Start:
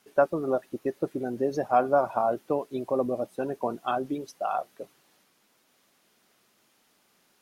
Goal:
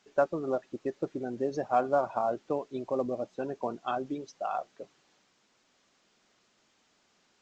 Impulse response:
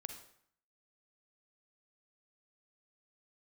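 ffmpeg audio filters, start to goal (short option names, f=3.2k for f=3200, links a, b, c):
-af "volume=-4dB" -ar 16000 -c:a pcm_alaw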